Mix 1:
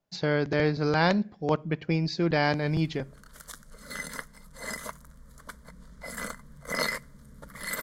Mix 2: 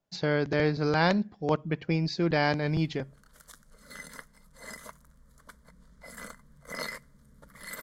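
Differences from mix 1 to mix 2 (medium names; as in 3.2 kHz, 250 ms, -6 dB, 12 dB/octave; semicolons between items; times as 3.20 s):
speech: send -8.5 dB; background -7.5 dB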